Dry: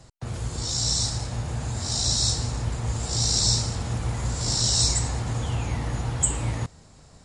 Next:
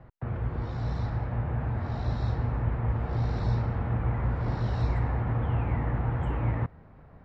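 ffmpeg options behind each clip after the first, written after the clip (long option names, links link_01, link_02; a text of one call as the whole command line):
ffmpeg -i in.wav -af "lowpass=frequency=2000:width=0.5412,lowpass=frequency=2000:width=1.3066" out.wav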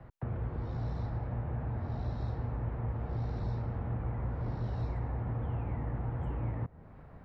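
ffmpeg -i in.wav -filter_complex "[0:a]acrossover=split=290|900[link_01][link_02][link_03];[link_01]acompressor=threshold=-33dB:ratio=4[link_04];[link_02]acompressor=threshold=-46dB:ratio=4[link_05];[link_03]acompressor=threshold=-57dB:ratio=4[link_06];[link_04][link_05][link_06]amix=inputs=3:normalize=0" out.wav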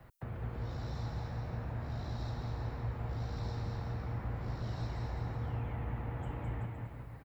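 ffmpeg -i in.wav -filter_complex "[0:a]crystalizer=i=6.5:c=0,asplit=2[link_01][link_02];[link_02]aecho=0:1:210|378|512.4|619.9|705.9:0.631|0.398|0.251|0.158|0.1[link_03];[link_01][link_03]amix=inputs=2:normalize=0,volume=-6dB" out.wav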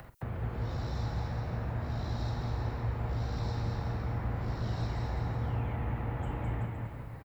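ffmpeg -i in.wav -filter_complex "[0:a]acompressor=mode=upward:threshold=-50dB:ratio=2.5,asplit=2[link_01][link_02];[link_02]adelay=46,volume=-11dB[link_03];[link_01][link_03]amix=inputs=2:normalize=0,volume=4.5dB" out.wav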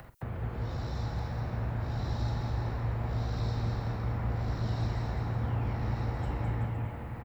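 ffmpeg -i in.wav -af "aecho=1:1:1189:0.501" out.wav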